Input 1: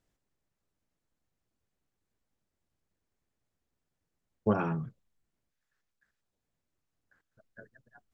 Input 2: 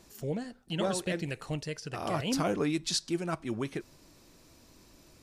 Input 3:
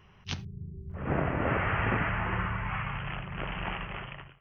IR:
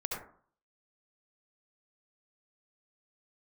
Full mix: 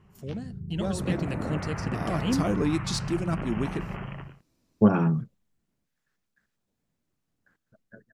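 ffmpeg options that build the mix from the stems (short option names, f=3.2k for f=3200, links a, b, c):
-filter_complex "[0:a]adelay=350,volume=-3.5dB[a];[1:a]deesser=0.55,agate=range=-17dB:threshold=-51dB:ratio=16:detection=peak,volume=-7dB[b];[2:a]acompressor=threshold=-35dB:ratio=6,lowpass=f=1.2k:p=1,volume=-2.5dB[c];[a][b][c]amix=inputs=3:normalize=0,dynaudnorm=f=140:g=13:m=6.5dB,equalizer=f=200:w=1:g=8"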